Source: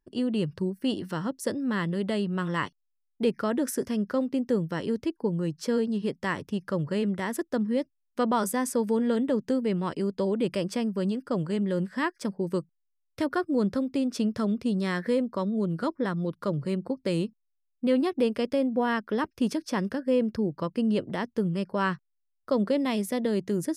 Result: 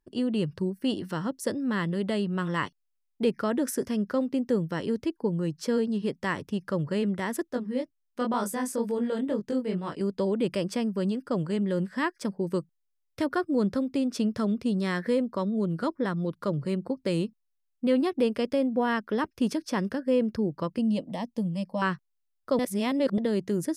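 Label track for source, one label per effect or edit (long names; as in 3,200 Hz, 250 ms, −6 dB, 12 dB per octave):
7.510000	10.010000	chorus effect 2.1 Hz, delay 19.5 ms, depth 4.4 ms
20.780000	21.820000	phaser with its sweep stopped centre 390 Hz, stages 6
22.590000	23.180000	reverse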